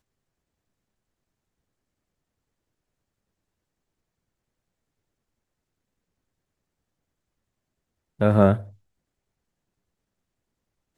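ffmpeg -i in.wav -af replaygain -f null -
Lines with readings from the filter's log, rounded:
track_gain = +41.2 dB
track_peak = 0.509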